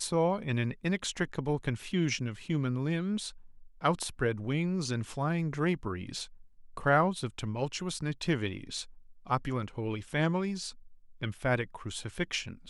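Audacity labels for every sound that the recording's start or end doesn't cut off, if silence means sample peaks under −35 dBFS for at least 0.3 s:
3.840000	6.240000	sound
6.770000	8.820000	sound
9.300000	10.700000	sound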